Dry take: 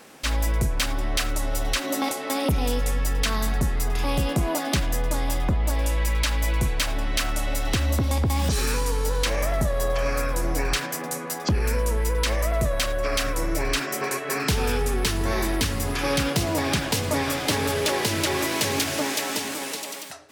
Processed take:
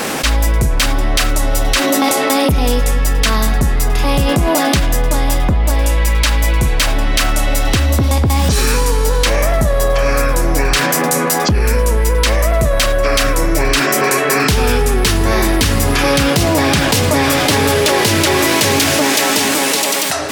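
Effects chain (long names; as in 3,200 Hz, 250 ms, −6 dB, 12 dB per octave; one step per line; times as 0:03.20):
envelope flattener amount 70%
level +7.5 dB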